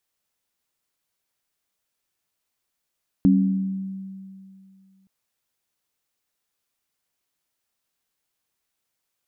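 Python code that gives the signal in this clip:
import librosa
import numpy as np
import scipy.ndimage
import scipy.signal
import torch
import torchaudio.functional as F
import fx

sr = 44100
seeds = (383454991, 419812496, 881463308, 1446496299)

y = fx.additive_free(sr, length_s=1.82, hz=192.0, level_db=-13.5, upper_db=(-0.5,), decay_s=2.47, upper_decays_s=(0.91,), upper_hz=(274.0,))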